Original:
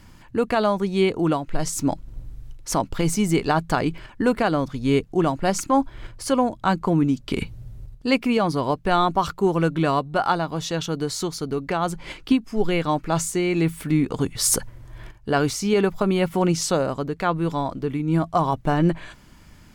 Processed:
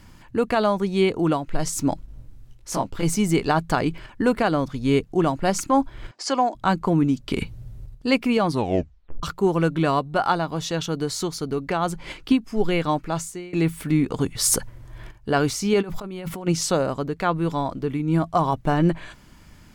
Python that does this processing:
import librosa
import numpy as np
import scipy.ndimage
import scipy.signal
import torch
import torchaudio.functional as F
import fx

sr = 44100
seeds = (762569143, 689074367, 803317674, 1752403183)

y = fx.detune_double(x, sr, cents=55, at=(2.06, 3.03))
y = fx.cabinet(y, sr, low_hz=290.0, low_slope=24, high_hz=7500.0, hz=(500.0, 730.0, 1900.0, 5000.0, 7200.0), db=(-6, 6, 3, 7, 4), at=(6.11, 6.55))
y = fx.over_compress(y, sr, threshold_db=-30.0, ratio=-1.0, at=(15.81, 16.46), fade=0.02)
y = fx.edit(y, sr, fx.tape_stop(start_s=8.5, length_s=0.73),
    fx.fade_out_to(start_s=12.9, length_s=0.63, floor_db=-23.5), tone=tone)